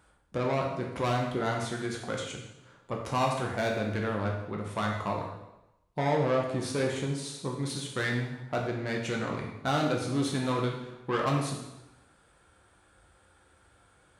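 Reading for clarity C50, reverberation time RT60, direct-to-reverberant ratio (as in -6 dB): 4.0 dB, 0.95 s, -0.5 dB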